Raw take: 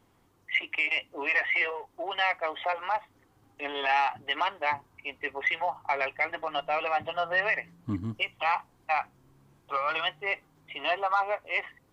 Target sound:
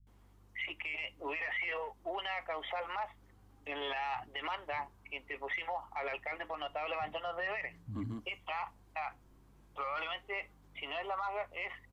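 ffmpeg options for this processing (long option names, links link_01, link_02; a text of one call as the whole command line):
ffmpeg -i in.wav -filter_complex "[0:a]alimiter=level_in=1.5dB:limit=-24dB:level=0:latency=1:release=39,volume=-1.5dB,aeval=exprs='val(0)+0.00126*(sin(2*PI*50*n/s)+sin(2*PI*2*50*n/s)/2+sin(2*PI*3*50*n/s)/3+sin(2*PI*4*50*n/s)/4+sin(2*PI*5*50*n/s)/5)':channel_layout=same,acrossover=split=170[link_01][link_02];[link_02]adelay=70[link_03];[link_01][link_03]amix=inputs=2:normalize=0,volume=-3.5dB" out.wav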